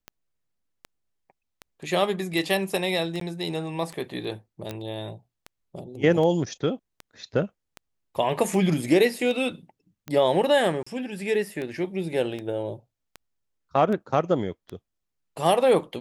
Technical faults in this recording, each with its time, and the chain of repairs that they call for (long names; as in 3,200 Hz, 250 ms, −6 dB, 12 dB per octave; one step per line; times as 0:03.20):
scratch tick 78 rpm −21 dBFS
0:03.20–0:03.21: drop-out 13 ms
0:04.71: click −18 dBFS
0:10.83–0:10.87: drop-out 35 ms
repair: click removal
repair the gap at 0:03.20, 13 ms
repair the gap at 0:10.83, 35 ms